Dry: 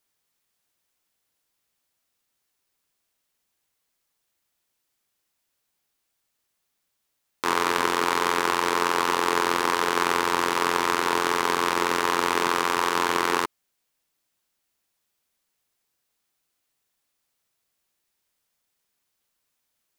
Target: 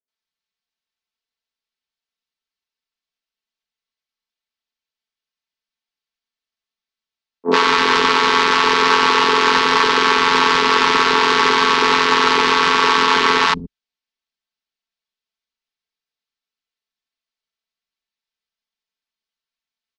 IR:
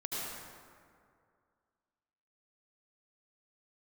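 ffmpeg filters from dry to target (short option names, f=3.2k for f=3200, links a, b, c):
-filter_complex "[0:a]lowpass=f=4.5k:w=0.5412,lowpass=f=4.5k:w=1.3066,aemphasis=mode=production:type=75kf,agate=range=-33dB:threshold=-17dB:ratio=3:detection=peak,aecho=1:1:4.5:0.76,acrossover=split=190|570[a][b][c];[c]adelay=80[d];[a]adelay=200[e];[e][b][d]amix=inputs=3:normalize=0,alimiter=level_in=21.5dB:limit=-1dB:release=50:level=0:latency=1,volume=-1.5dB"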